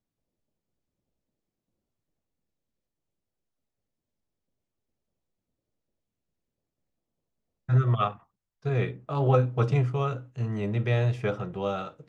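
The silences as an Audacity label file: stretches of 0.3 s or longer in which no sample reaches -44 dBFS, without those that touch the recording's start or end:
8.160000	8.650000	silence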